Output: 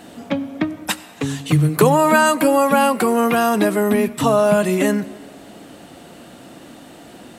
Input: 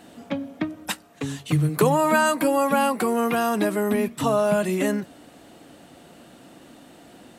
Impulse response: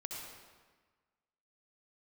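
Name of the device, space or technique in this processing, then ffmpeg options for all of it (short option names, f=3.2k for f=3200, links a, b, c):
ducked reverb: -filter_complex "[0:a]asplit=3[a][b][c];[1:a]atrim=start_sample=2205[d];[b][d]afir=irnorm=-1:irlink=0[e];[c]apad=whole_len=325826[f];[e][f]sidechaincompress=threshold=-26dB:ratio=8:attack=16:release=1120,volume=-7dB[g];[a][g]amix=inputs=2:normalize=0,volume=5dB"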